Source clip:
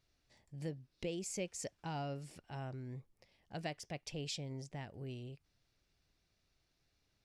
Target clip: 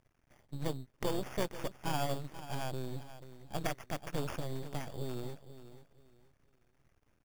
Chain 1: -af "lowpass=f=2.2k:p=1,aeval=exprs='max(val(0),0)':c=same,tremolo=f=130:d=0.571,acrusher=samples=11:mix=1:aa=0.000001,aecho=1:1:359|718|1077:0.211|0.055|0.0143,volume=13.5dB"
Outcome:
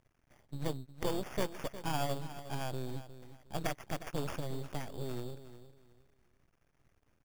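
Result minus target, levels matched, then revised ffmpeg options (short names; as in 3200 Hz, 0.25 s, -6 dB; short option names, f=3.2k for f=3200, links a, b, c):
echo 0.126 s early
-af "lowpass=f=2.2k:p=1,aeval=exprs='max(val(0),0)':c=same,tremolo=f=130:d=0.571,acrusher=samples=11:mix=1:aa=0.000001,aecho=1:1:485|970|1455:0.211|0.055|0.0143,volume=13.5dB"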